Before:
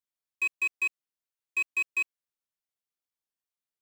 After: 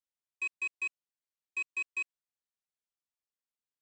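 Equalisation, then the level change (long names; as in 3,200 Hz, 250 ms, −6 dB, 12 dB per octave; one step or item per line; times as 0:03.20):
linear-phase brick-wall low-pass 9,400 Hz
−6.5 dB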